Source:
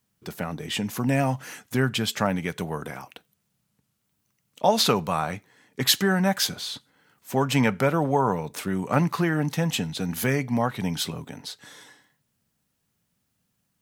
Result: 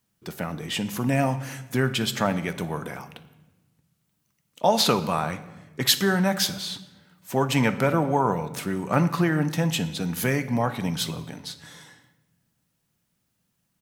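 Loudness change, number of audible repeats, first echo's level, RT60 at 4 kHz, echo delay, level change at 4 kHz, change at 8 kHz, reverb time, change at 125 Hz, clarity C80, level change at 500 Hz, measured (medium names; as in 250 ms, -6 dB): +0.5 dB, 2, -19.0 dB, 0.85 s, 60 ms, +0.5 dB, 0.0 dB, 1.1 s, +0.5 dB, 16.0 dB, 0.0 dB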